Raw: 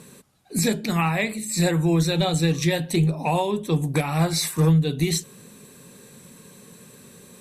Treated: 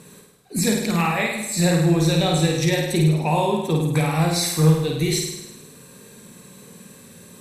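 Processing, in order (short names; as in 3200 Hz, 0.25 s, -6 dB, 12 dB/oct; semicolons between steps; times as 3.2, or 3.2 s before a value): flutter echo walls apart 8.9 m, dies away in 0.92 s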